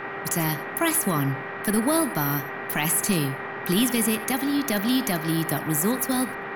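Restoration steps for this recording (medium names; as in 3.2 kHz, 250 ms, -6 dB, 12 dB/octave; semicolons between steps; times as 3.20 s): de-hum 395.2 Hz, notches 6; band-stop 1.9 kHz, Q 30; noise print and reduce 30 dB; inverse comb 87 ms -17 dB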